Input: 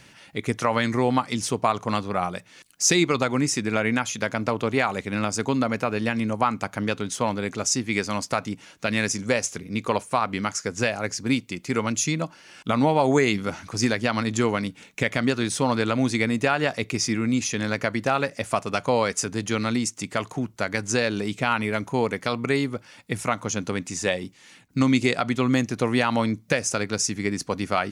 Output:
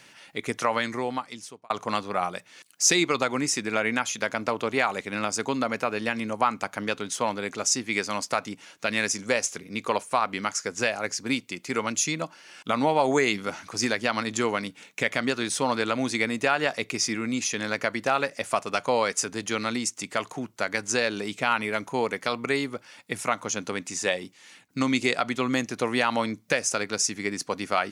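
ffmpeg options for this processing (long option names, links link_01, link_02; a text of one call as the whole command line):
ffmpeg -i in.wav -filter_complex "[0:a]asplit=2[link_01][link_02];[link_01]atrim=end=1.7,asetpts=PTS-STARTPTS,afade=type=out:start_time=0.61:duration=1.09[link_03];[link_02]atrim=start=1.7,asetpts=PTS-STARTPTS,afade=type=in:duration=0.004:curve=hsin[link_04];[link_03][link_04]concat=n=2:v=0:a=1,highpass=frequency=400:poles=1" out.wav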